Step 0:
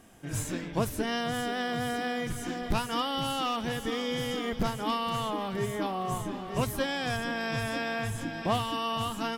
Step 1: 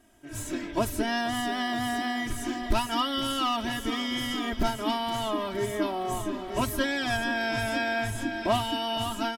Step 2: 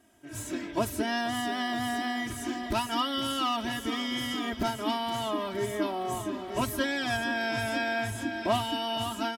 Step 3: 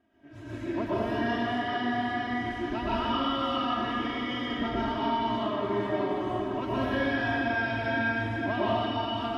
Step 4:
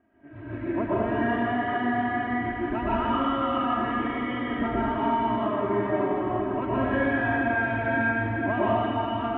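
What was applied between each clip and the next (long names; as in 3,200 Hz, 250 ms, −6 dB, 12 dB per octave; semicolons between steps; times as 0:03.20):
comb filter 3.1 ms, depth 92%; automatic gain control gain up to 8.5 dB; level −8 dB
high-pass filter 72 Hz; level −1.5 dB
high-frequency loss of the air 290 metres; dense smooth reverb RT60 2.1 s, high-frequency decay 0.8×, pre-delay 105 ms, DRR −8.5 dB; level −6 dB
low-pass filter 2,300 Hz 24 dB per octave; level +3.5 dB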